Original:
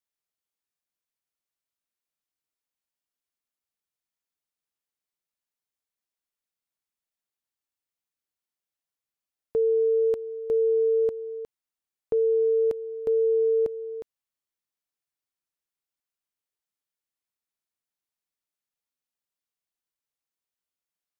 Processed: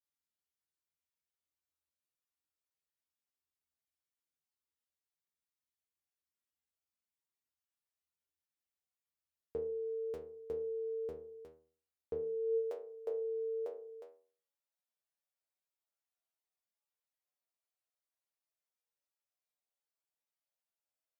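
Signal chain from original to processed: inharmonic resonator 77 Hz, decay 0.53 s, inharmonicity 0.002; high-pass sweep 62 Hz -> 580 Hz, 12.10–12.63 s; trim +3.5 dB

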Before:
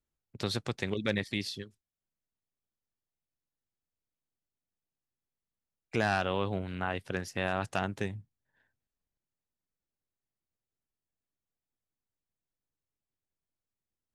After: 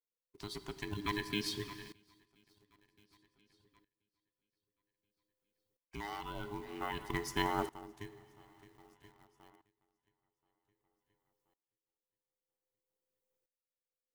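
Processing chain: every band turned upside down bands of 500 Hz; reverb removal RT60 0.52 s; 7.42–7.95 s: peaking EQ 4.7 kHz -13.5 dB 2.8 oct; shuffle delay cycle 1029 ms, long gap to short 1.5:1, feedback 31%, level -20.5 dB; plate-style reverb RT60 2 s, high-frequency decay 0.9×, DRR 12 dB; in parallel at -11 dB: companded quantiser 4-bit; on the sum: treble shelf 11 kHz +9.5 dB; sawtooth tremolo in dB swelling 0.52 Hz, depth 20 dB; trim +1 dB

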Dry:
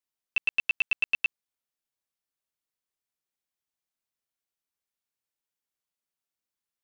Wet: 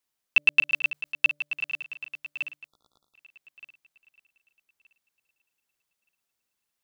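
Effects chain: backward echo that repeats 611 ms, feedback 42%, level -12 dB; 0.69–1.16 s: compressor with a negative ratio -35 dBFS, ratio -1; 2.68–3.15 s: spectral selection erased 1.4–3.4 kHz; de-hum 146.9 Hz, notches 4; trim +7.5 dB

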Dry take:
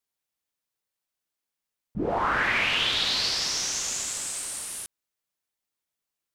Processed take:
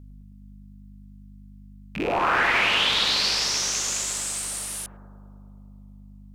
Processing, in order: rattle on loud lows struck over -44 dBFS, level -23 dBFS; bass shelf 180 Hz -9 dB; hum 50 Hz, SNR 17 dB; bucket-brigade echo 105 ms, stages 1024, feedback 78%, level -8 dB; trim +3 dB

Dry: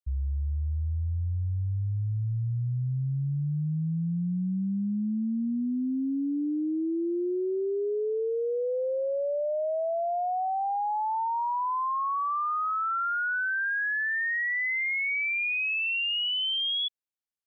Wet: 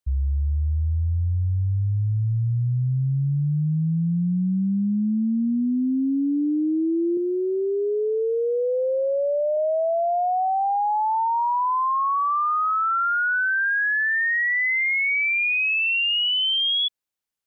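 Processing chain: 7.17–9.57 s: tone controls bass -9 dB, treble +7 dB; trim +6.5 dB

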